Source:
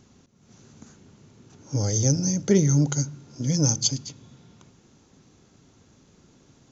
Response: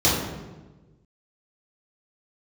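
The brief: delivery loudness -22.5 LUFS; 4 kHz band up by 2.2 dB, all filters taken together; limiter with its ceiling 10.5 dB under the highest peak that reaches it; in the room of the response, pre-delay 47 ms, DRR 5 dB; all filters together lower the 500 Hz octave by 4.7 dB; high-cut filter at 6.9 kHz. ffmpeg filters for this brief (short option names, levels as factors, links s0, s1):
-filter_complex "[0:a]lowpass=6900,equalizer=f=500:t=o:g=-6.5,equalizer=f=4000:t=o:g=4,alimiter=limit=0.133:level=0:latency=1,asplit=2[s0][s1];[1:a]atrim=start_sample=2205,adelay=47[s2];[s1][s2]afir=irnorm=-1:irlink=0,volume=0.0668[s3];[s0][s3]amix=inputs=2:normalize=0,volume=1.12"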